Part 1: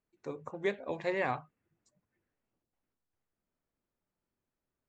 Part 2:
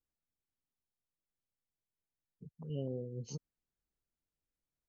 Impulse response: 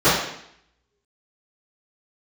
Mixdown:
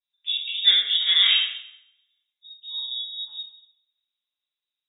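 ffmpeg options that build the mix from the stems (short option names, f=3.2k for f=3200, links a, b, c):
-filter_complex "[0:a]afwtdn=0.00355,volume=-5.5dB,asplit=3[a][b][c];[b]volume=-7dB[d];[1:a]volume=-2.5dB,asplit=2[e][f];[f]volume=-19dB[g];[c]apad=whole_len=215609[h];[e][h]sidechaincompress=threshold=-56dB:ratio=8:attack=16:release=1150[i];[2:a]atrim=start_sample=2205[j];[d][g]amix=inputs=2:normalize=0[k];[k][j]afir=irnorm=-1:irlink=0[l];[a][i][l]amix=inputs=3:normalize=0,lowpass=f=3.3k:t=q:w=0.5098,lowpass=f=3.3k:t=q:w=0.6013,lowpass=f=3.3k:t=q:w=0.9,lowpass=f=3.3k:t=q:w=2.563,afreqshift=-3900"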